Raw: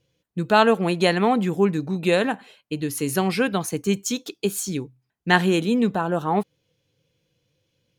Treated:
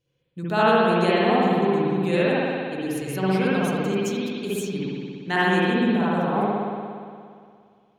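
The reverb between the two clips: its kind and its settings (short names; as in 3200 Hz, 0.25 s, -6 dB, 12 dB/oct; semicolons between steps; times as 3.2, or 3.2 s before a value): spring tank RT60 2.2 s, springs 58 ms, chirp 60 ms, DRR -9 dB; gain -9.5 dB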